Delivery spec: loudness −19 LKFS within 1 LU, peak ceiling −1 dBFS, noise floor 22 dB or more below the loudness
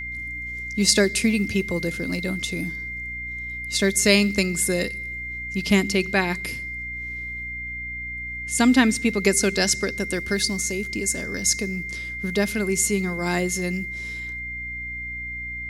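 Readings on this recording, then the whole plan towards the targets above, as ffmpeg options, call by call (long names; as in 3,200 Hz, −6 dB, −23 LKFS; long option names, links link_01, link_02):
mains hum 60 Hz; hum harmonics up to 300 Hz; level of the hum −38 dBFS; interfering tone 2,100 Hz; level of the tone −30 dBFS; integrated loudness −23.5 LKFS; sample peak −1.5 dBFS; target loudness −19.0 LKFS
→ -af "bandreject=frequency=60:width_type=h:width=4,bandreject=frequency=120:width_type=h:width=4,bandreject=frequency=180:width_type=h:width=4,bandreject=frequency=240:width_type=h:width=4,bandreject=frequency=300:width_type=h:width=4"
-af "bandreject=frequency=2100:width=30"
-af "volume=4.5dB,alimiter=limit=-1dB:level=0:latency=1"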